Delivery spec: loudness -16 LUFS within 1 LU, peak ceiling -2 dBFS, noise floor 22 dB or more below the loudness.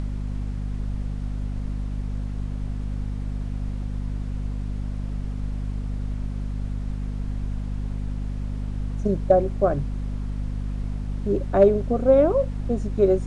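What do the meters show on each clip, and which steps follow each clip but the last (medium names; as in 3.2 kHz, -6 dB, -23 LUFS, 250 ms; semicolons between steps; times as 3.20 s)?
hum 50 Hz; highest harmonic 250 Hz; hum level -26 dBFS; noise floor -31 dBFS; noise floor target -49 dBFS; loudness -26.5 LUFS; peak level -4.5 dBFS; loudness target -16.0 LUFS
-> hum notches 50/100/150/200/250 Hz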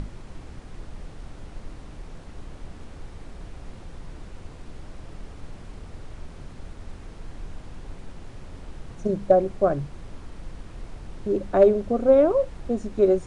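hum not found; noise floor -43 dBFS; noise floor target -44 dBFS
-> noise print and reduce 6 dB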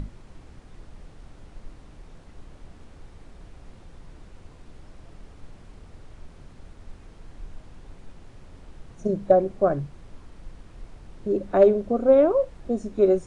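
noise floor -49 dBFS; loudness -22.0 LUFS; peak level -5.0 dBFS; loudness target -16.0 LUFS
-> trim +6 dB; peak limiter -2 dBFS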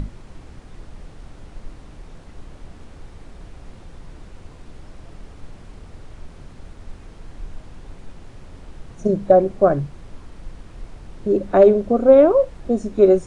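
loudness -16.5 LUFS; peak level -2.0 dBFS; noise floor -43 dBFS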